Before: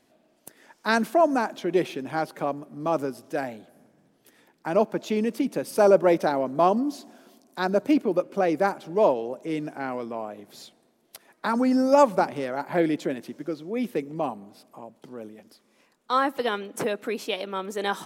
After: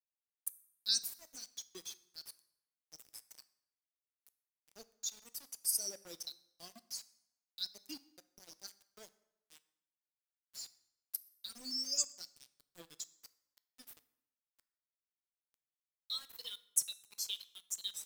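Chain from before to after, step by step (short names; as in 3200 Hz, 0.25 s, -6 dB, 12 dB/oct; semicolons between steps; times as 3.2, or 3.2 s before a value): per-bin expansion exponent 2; inverse Chebyshev high-pass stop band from 2300 Hz, stop band 40 dB; in parallel at -2 dB: compressor, threshold -60 dBFS, peak gain reduction 22 dB; on the sum: sample gate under -59 dBFS; plate-style reverb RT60 0.87 s, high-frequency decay 0.75×, DRR 14.5 dB; gain +10 dB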